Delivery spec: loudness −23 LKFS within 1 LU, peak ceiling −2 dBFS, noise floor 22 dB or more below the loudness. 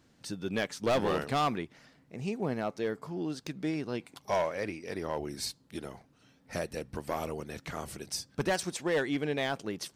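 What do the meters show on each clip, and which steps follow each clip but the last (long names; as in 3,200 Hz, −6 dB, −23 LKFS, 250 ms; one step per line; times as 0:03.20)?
share of clipped samples 1.0%; peaks flattened at −23.0 dBFS; integrated loudness −34.0 LKFS; sample peak −23.0 dBFS; target loudness −23.0 LKFS
→ clipped peaks rebuilt −23 dBFS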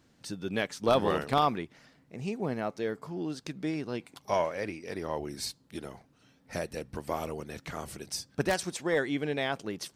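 share of clipped samples 0.0%; integrated loudness −32.5 LKFS; sample peak −14.0 dBFS; target loudness −23.0 LKFS
→ level +9.5 dB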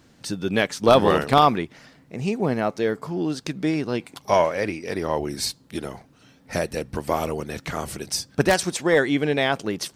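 integrated loudness −23.0 LKFS; sample peak −4.5 dBFS; background noise floor −56 dBFS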